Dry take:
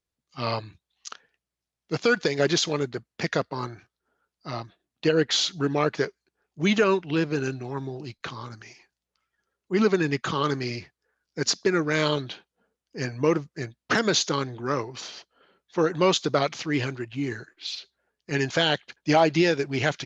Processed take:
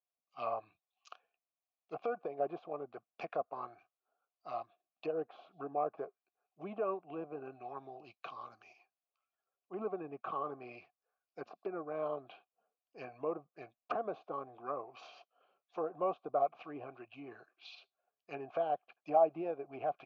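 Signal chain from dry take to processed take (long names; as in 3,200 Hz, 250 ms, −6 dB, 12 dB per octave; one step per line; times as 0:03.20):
treble cut that deepens with the level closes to 870 Hz, closed at −22 dBFS
formant filter a
level +1 dB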